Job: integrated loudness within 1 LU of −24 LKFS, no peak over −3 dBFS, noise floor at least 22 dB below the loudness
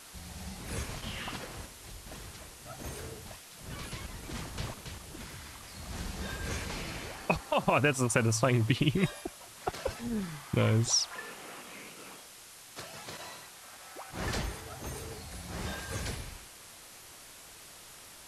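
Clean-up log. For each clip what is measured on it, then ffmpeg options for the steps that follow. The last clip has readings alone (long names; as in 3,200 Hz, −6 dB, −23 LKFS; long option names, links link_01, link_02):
background noise floor −51 dBFS; target noise floor −56 dBFS; integrated loudness −34.0 LKFS; sample peak −11.5 dBFS; target loudness −24.0 LKFS
→ -af "afftdn=noise_reduction=6:noise_floor=-51"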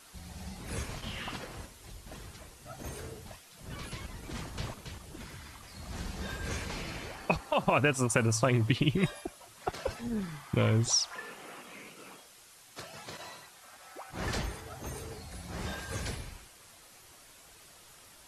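background noise floor −56 dBFS; integrated loudness −33.5 LKFS; sample peak −11.5 dBFS; target loudness −24.0 LKFS
→ -af "volume=9.5dB,alimiter=limit=-3dB:level=0:latency=1"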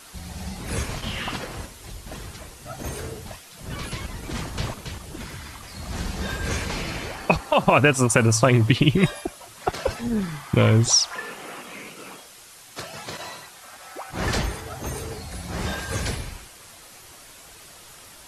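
integrated loudness −24.0 LKFS; sample peak −3.0 dBFS; background noise floor −46 dBFS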